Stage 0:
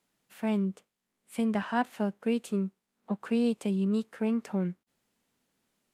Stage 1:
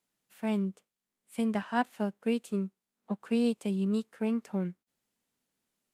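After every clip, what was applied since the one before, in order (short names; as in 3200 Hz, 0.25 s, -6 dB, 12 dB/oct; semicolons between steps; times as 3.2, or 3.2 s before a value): high shelf 4600 Hz +5 dB; upward expander 1.5:1, over -39 dBFS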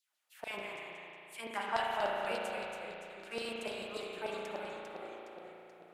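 LFO high-pass saw down 6.8 Hz 550–4700 Hz; echoes that change speed 0.134 s, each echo -1 st, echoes 3, each echo -6 dB; spring tank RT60 2.9 s, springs 35 ms, chirp 45 ms, DRR -2 dB; gain -3 dB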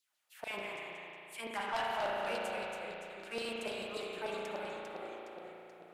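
soft clip -30.5 dBFS, distortion -13 dB; gain +1.5 dB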